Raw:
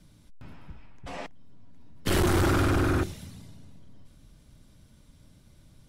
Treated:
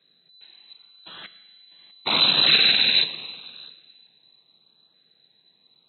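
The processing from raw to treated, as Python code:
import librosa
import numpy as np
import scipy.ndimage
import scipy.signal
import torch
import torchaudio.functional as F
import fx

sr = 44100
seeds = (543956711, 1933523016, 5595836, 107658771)

y = fx.octave_divider(x, sr, octaves=2, level_db=3.0)
y = fx.peak_eq(y, sr, hz=2400.0, db=12.0, octaves=2.9)
y = fx.rev_plate(y, sr, seeds[0], rt60_s=1.9, hf_ratio=0.75, predelay_ms=0, drr_db=9.5)
y = fx.freq_invert(y, sr, carrier_hz=4000)
y = scipy.signal.sosfilt(scipy.signal.butter(4, 140.0, 'highpass', fs=sr, output='sos'), y)
y = fx.low_shelf(y, sr, hz=340.0, db=8.5)
y = y + 10.0 ** (-15.5 / 20.0) * np.pad(y, (int(648 * sr / 1000.0), 0))[:len(y)]
y = fx.filter_lfo_notch(y, sr, shape='saw_up', hz=0.81, low_hz=870.0, high_hz=2300.0, q=1.9)
y = fx.upward_expand(y, sr, threshold_db=-39.0, expansion=1.5)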